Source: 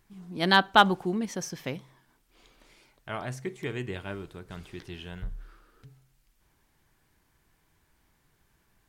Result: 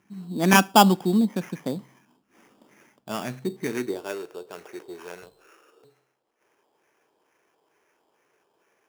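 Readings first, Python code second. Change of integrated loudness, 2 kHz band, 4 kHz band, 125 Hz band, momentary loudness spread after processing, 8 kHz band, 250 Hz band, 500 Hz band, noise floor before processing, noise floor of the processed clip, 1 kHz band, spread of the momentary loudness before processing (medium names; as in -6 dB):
+4.5 dB, +0.5 dB, +0.5 dB, +6.0 dB, 23 LU, +10.5 dB, +9.0 dB, +5.0 dB, -70 dBFS, -73 dBFS, +3.0 dB, 22 LU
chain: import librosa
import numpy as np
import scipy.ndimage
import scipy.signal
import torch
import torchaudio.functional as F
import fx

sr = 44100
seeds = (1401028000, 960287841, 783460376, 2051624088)

y = fx.high_shelf(x, sr, hz=8000.0, db=7.0)
y = fx.filter_lfo_lowpass(y, sr, shape='sine', hz=2.2, low_hz=880.0, high_hz=3100.0, q=1.3)
y = fx.sample_hold(y, sr, seeds[0], rate_hz=4100.0, jitter_pct=0)
y = fx.low_shelf(y, sr, hz=67.0, db=10.0)
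y = fx.filter_sweep_highpass(y, sr, from_hz=210.0, to_hz=440.0, start_s=3.62, end_s=4.14, q=2.5)
y = scipy.signal.sosfilt(scipy.signal.butter(2, 48.0, 'highpass', fs=sr, output='sos'), y)
y = F.gain(torch.from_numpy(y), 1.5).numpy()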